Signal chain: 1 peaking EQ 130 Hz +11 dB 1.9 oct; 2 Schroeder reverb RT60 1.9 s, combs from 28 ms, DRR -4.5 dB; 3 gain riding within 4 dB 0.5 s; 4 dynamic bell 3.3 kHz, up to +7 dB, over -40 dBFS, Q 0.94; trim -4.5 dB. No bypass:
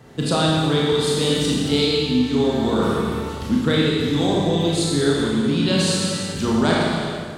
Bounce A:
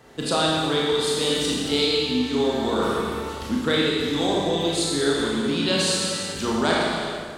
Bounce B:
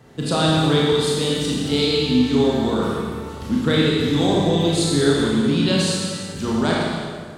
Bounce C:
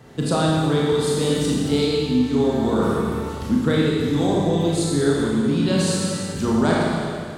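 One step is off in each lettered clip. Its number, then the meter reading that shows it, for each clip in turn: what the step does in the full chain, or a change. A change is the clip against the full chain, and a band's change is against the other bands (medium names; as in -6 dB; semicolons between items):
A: 1, 125 Hz band -9.5 dB; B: 3, momentary loudness spread change +3 LU; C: 4, 4 kHz band -6.0 dB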